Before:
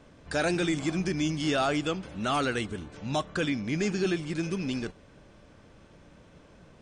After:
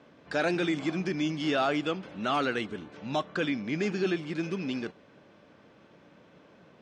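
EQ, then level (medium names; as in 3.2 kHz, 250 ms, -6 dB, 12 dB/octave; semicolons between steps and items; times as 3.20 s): band-pass 180–4200 Hz; 0.0 dB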